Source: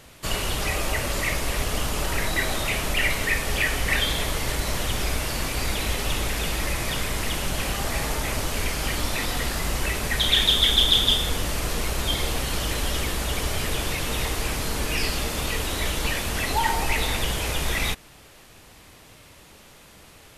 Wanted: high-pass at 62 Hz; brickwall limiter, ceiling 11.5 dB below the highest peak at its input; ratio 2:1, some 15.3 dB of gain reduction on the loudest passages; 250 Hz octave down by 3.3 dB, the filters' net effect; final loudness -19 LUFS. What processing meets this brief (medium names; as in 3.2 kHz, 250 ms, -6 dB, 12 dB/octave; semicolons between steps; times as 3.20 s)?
high-pass 62 Hz; peaking EQ 250 Hz -4.5 dB; compression 2:1, threshold -45 dBFS; trim +22.5 dB; peak limiter -10.5 dBFS